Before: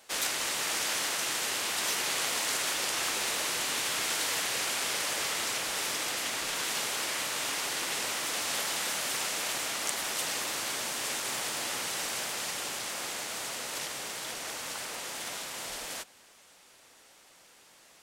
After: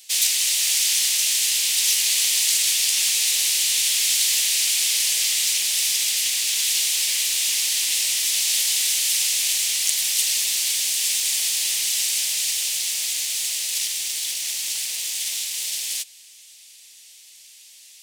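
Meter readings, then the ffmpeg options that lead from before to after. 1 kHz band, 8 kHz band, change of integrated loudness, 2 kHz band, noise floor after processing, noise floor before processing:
under -10 dB, +13.5 dB, +11.5 dB, +3.5 dB, -47 dBFS, -58 dBFS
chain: -filter_complex "[0:a]asplit=2[a][b];[b]acrusher=bits=3:dc=4:mix=0:aa=0.000001,volume=-9dB[c];[a][c]amix=inputs=2:normalize=0,aexciter=amount=8.1:drive=9.3:freq=2.1k,volume=-14dB"

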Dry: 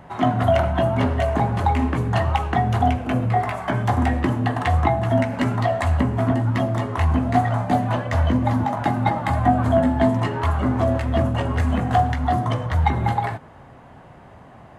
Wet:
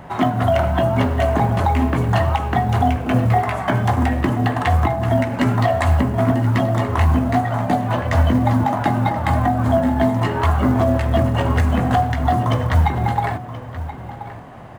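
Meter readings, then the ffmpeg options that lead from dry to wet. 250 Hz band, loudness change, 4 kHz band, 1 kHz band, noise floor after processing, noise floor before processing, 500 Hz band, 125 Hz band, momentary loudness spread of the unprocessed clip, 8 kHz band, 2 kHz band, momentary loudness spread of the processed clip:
+2.5 dB, +2.5 dB, +3.0 dB, +2.0 dB, -33 dBFS, -45 dBFS, +2.5 dB, +3.0 dB, 4 LU, n/a, +3.0 dB, 4 LU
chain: -filter_complex "[0:a]alimiter=limit=-13dB:level=0:latency=1:release=471,asplit=2[a][b];[b]adelay=1029,lowpass=f=3.4k:p=1,volume=-13dB,asplit=2[c][d];[d]adelay=1029,lowpass=f=3.4k:p=1,volume=0.16[e];[a][c][e]amix=inputs=3:normalize=0,acrusher=bits=9:mode=log:mix=0:aa=0.000001,volume=6dB"

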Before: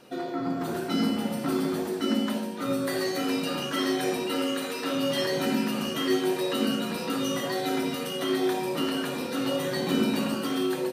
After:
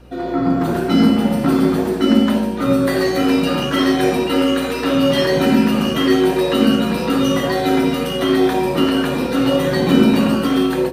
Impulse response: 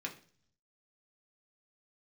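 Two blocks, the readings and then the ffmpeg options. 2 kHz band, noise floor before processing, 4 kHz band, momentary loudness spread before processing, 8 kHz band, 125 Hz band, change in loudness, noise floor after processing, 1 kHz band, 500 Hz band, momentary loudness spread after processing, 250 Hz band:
+10.0 dB, -33 dBFS, +8.0 dB, 4 LU, +4.5 dB, +14.5 dB, +11.5 dB, -22 dBFS, +10.5 dB, +11.0 dB, 4 LU, +13.0 dB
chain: -filter_complex "[0:a]bandreject=f=74.1:t=h:w=4,bandreject=f=148.2:t=h:w=4,bandreject=f=222.3:t=h:w=4,bandreject=f=296.4:t=h:w=4,bandreject=f=370.5:t=h:w=4,bandreject=f=444.6:t=h:w=4,bandreject=f=518.7:t=h:w=4,bandreject=f=592.8:t=h:w=4,bandreject=f=666.9:t=h:w=4,bandreject=f=741:t=h:w=4,bandreject=f=815.1:t=h:w=4,bandreject=f=889.2:t=h:w=4,bandreject=f=963.3:t=h:w=4,bandreject=f=1.0374k:t=h:w=4,bandreject=f=1.1115k:t=h:w=4,bandreject=f=1.1856k:t=h:w=4,bandreject=f=1.2597k:t=h:w=4,bandreject=f=1.3338k:t=h:w=4,bandreject=f=1.4079k:t=h:w=4,bandreject=f=1.482k:t=h:w=4,bandreject=f=1.5561k:t=h:w=4,bandreject=f=1.6302k:t=h:w=4,bandreject=f=1.7043k:t=h:w=4,bandreject=f=1.7784k:t=h:w=4,bandreject=f=1.8525k:t=h:w=4,bandreject=f=1.9266k:t=h:w=4,bandreject=f=2.0007k:t=h:w=4,bandreject=f=2.0748k:t=h:w=4,aeval=exprs='val(0)+0.002*(sin(2*PI*60*n/s)+sin(2*PI*2*60*n/s)/2+sin(2*PI*3*60*n/s)/3+sin(2*PI*4*60*n/s)/4+sin(2*PI*5*60*n/s)/5)':c=same,dynaudnorm=f=160:g=3:m=6.5dB,lowshelf=f=170:g=6.5,asplit=2[a][b];[b]adynamicsmooth=sensitivity=1:basefreq=3.6k,volume=-0.5dB[c];[a][c]amix=inputs=2:normalize=0,volume=-1dB"

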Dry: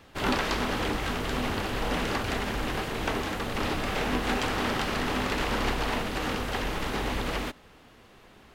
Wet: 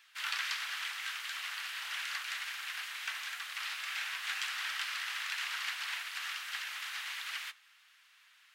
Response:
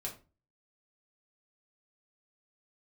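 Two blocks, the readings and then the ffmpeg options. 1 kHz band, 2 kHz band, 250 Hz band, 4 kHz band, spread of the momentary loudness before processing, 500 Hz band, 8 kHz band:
-14.5 dB, -4.0 dB, under -40 dB, -3.0 dB, 3 LU, under -35 dB, -3.0 dB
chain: -filter_complex "[0:a]highpass=f=1.5k:w=0.5412,highpass=f=1.5k:w=1.3066,asplit=2[a][b];[1:a]atrim=start_sample=2205[c];[b][c]afir=irnorm=-1:irlink=0,volume=-13.5dB[d];[a][d]amix=inputs=2:normalize=0,flanger=delay=1.2:depth=9.4:regen=-54:speed=1.5:shape=sinusoidal"

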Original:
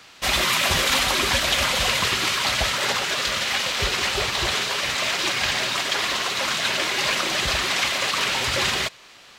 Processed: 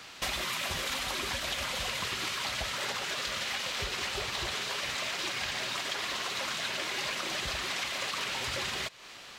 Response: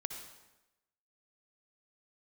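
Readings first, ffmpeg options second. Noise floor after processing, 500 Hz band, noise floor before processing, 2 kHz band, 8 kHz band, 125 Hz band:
-48 dBFS, -11.5 dB, -48 dBFS, -11.0 dB, -11.5 dB, -11.5 dB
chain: -af "acompressor=threshold=-32dB:ratio=6"

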